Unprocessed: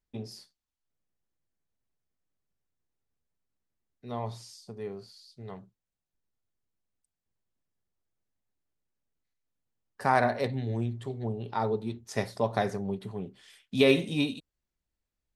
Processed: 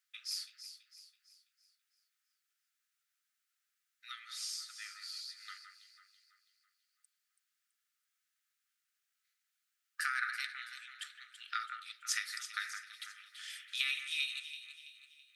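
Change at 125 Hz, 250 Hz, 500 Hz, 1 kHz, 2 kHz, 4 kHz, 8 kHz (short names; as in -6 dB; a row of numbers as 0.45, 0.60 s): under -40 dB, under -40 dB, under -40 dB, -13.5 dB, -1.5 dB, +0.5 dB, +7.5 dB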